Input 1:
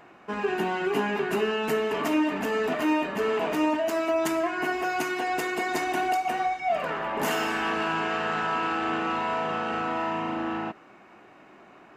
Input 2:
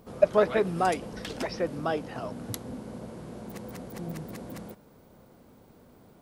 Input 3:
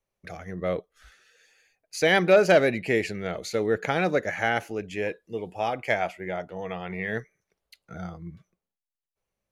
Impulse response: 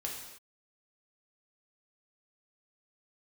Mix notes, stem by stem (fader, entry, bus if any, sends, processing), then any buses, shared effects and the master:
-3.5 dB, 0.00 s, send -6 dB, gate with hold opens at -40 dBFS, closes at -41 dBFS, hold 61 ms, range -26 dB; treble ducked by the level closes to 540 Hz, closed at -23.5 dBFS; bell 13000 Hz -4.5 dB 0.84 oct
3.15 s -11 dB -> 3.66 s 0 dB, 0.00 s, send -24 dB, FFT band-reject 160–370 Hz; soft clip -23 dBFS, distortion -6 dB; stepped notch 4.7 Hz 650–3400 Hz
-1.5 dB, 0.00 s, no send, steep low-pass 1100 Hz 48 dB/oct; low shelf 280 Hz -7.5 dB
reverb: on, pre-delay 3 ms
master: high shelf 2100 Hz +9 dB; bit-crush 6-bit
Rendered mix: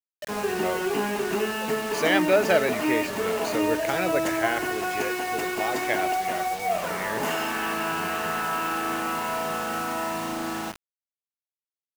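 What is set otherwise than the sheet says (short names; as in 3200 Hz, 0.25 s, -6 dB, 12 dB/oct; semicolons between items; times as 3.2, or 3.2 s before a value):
stem 1: missing treble ducked by the level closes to 540 Hz, closed at -23.5 dBFS; stem 3: missing steep low-pass 1100 Hz 48 dB/oct; master: missing high shelf 2100 Hz +9 dB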